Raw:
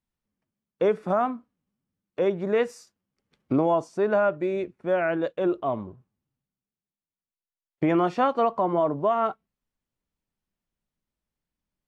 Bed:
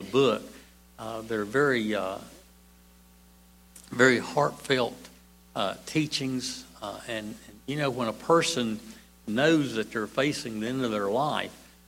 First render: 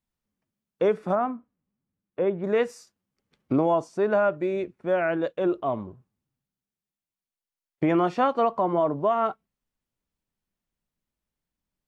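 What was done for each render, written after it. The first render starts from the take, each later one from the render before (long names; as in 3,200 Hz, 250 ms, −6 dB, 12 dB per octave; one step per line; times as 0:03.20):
0:01.15–0:02.44: high-frequency loss of the air 390 metres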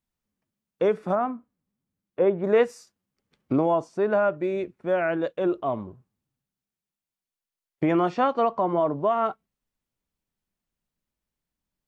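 0:02.20–0:02.65: parametric band 690 Hz +4.5 dB 2.6 octaves
0:03.66–0:04.44: high-shelf EQ 5,400 Hz −6 dB
0:08.10–0:09.18: low-pass filter 7,100 Hz 24 dB per octave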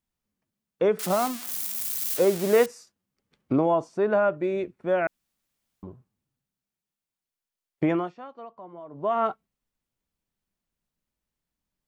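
0:00.99–0:02.66: spike at every zero crossing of −19.5 dBFS
0:05.07–0:05.83: fill with room tone
0:07.86–0:09.17: duck −19.5 dB, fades 0.27 s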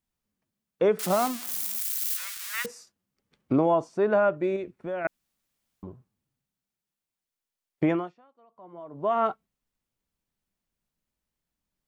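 0:01.78–0:02.65: Butterworth high-pass 1,200 Hz
0:04.56–0:05.05: downward compressor 2.5 to 1, threshold −32 dBFS
0:07.89–0:08.80: duck −17.5 dB, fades 0.33 s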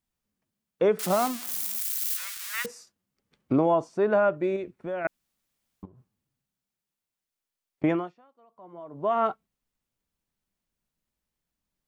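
0:05.85–0:07.84: downward compressor 16 to 1, threshold −48 dBFS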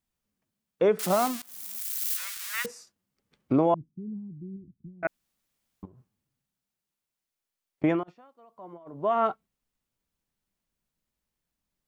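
0:01.42–0:02.12: fade in linear, from −22.5 dB
0:03.74–0:05.03: inverse Chebyshev low-pass filter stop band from 550 Hz, stop band 50 dB
0:08.03–0:08.92: compressor whose output falls as the input rises −45 dBFS, ratio −0.5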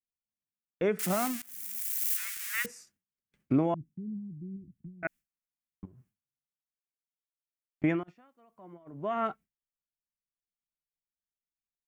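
noise gate with hold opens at −52 dBFS
octave-band graphic EQ 500/1,000/2,000/4,000 Hz −7/−8/+4/−7 dB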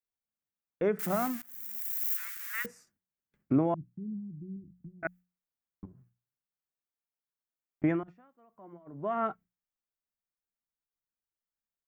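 flat-topped bell 5,200 Hz −8.5 dB 2.7 octaves
mains-hum notches 60/120/180 Hz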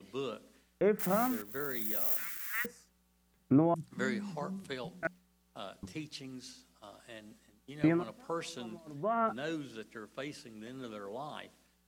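mix in bed −16 dB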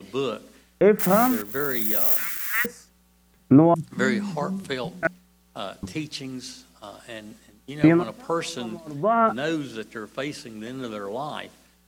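level +11.5 dB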